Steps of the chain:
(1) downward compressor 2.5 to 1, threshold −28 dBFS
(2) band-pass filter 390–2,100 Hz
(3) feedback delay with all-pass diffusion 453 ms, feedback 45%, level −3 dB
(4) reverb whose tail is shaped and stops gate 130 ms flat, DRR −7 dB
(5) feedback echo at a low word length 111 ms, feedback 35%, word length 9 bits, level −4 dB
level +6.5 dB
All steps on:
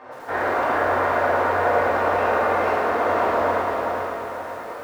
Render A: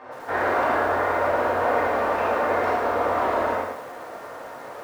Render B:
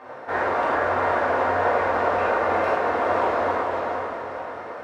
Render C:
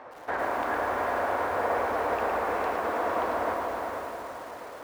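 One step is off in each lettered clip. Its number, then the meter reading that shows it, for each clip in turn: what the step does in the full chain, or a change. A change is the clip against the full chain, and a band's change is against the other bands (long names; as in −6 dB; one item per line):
3, change in momentary loudness spread +6 LU
5, change in integrated loudness −1.5 LU
4, 125 Hz band −3.5 dB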